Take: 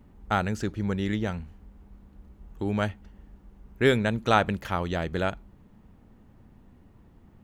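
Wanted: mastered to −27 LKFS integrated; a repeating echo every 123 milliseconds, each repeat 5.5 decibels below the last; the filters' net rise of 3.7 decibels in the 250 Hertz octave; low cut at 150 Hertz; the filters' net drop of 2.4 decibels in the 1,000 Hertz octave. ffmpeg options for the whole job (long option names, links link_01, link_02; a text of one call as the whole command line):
ffmpeg -i in.wav -af "highpass=150,equalizer=frequency=250:width_type=o:gain=6,equalizer=frequency=1000:width_type=o:gain=-4,aecho=1:1:123|246|369|492|615|738|861:0.531|0.281|0.149|0.079|0.0419|0.0222|0.0118,volume=-1.5dB" out.wav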